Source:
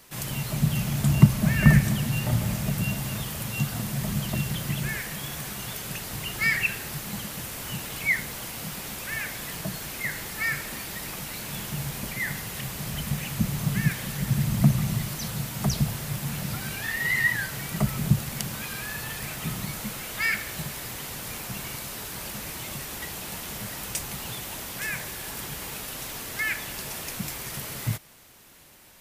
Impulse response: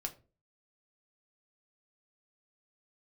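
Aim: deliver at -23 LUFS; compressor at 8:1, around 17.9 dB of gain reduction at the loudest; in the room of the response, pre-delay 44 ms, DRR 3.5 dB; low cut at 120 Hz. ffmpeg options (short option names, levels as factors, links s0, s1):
-filter_complex "[0:a]highpass=120,acompressor=threshold=0.0282:ratio=8,asplit=2[s0][s1];[1:a]atrim=start_sample=2205,adelay=44[s2];[s1][s2]afir=irnorm=-1:irlink=0,volume=0.75[s3];[s0][s3]amix=inputs=2:normalize=0,volume=2.99"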